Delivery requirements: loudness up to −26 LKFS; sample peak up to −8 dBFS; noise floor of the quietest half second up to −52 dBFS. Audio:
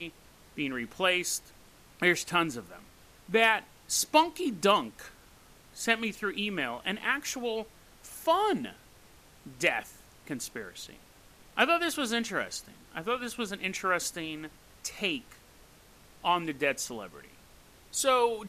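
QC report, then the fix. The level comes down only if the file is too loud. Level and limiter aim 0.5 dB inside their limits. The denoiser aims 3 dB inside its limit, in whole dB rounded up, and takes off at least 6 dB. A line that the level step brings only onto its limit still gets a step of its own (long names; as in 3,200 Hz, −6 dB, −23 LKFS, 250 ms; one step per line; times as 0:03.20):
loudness −29.5 LKFS: in spec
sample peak −10.5 dBFS: in spec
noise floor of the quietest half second −57 dBFS: in spec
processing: no processing needed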